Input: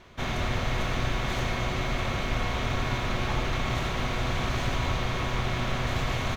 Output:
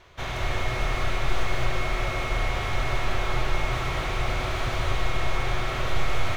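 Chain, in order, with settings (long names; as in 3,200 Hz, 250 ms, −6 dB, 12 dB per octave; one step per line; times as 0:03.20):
parametric band 220 Hz −13.5 dB 0.73 octaves
comb and all-pass reverb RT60 1.3 s, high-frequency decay 0.85×, pre-delay 120 ms, DRR 0 dB
slew-rate limiting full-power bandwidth 68 Hz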